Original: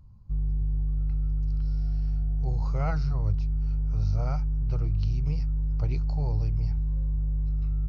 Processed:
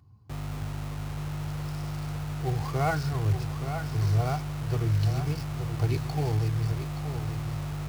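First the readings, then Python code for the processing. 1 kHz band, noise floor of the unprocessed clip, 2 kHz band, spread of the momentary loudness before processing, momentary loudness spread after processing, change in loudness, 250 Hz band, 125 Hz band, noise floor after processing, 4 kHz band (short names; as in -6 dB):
+9.0 dB, -26 dBFS, +11.0 dB, 2 LU, 9 LU, -1.0 dB, +3.5 dB, +1.0 dB, -36 dBFS, n/a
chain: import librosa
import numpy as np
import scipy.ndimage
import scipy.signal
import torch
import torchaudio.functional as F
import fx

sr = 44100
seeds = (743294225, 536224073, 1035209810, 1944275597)

p1 = x + 0.63 * np.pad(x, (int(2.7 * sr / 1000.0), 0))[:len(x)]
p2 = fx.quant_dither(p1, sr, seeds[0], bits=6, dither='none')
p3 = p1 + F.gain(torch.from_numpy(p2), -6.5).numpy()
p4 = scipy.signal.sosfilt(scipy.signal.butter(4, 100.0, 'highpass', fs=sr, output='sos'), p3)
p5 = p4 + 10.0 ** (-8.5 / 20.0) * np.pad(p4, (int(874 * sr / 1000.0), 0))[:len(p4)]
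y = F.gain(torch.from_numpy(p5), 2.0).numpy()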